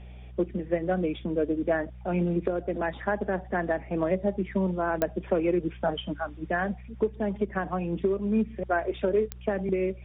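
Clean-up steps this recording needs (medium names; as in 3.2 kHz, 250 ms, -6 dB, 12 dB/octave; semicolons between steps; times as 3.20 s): de-click; de-hum 61.3 Hz, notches 3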